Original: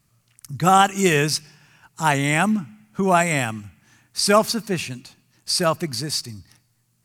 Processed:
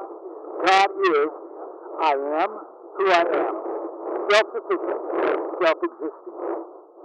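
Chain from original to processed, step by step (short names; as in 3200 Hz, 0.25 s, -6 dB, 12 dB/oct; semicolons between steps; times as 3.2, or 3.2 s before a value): wind noise 430 Hz -32 dBFS; dynamic EQ 980 Hz, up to -6 dB, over -30 dBFS, Q 1.4; in parallel at -1.5 dB: compressor, threshold -30 dBFS, peak gain reduction 16 dB; on the sum: short-mantissa float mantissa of 2-bit; Chebyshev band-pass 330–1300 Hz, order 5; reverse echo 0.796 s -24 dB; core saturation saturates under 2600 Hz; gain +6 dB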